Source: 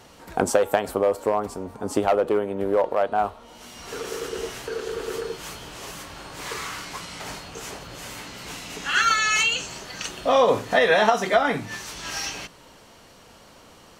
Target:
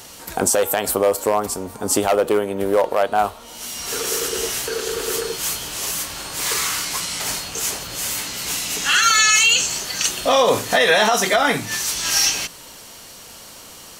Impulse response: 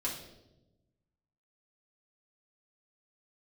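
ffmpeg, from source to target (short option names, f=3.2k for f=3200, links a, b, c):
-af "crystalizer=i=4:c=0,alimiter=limit=-9.5dB:level=0:latency=1:release=38,volume=3.5dB"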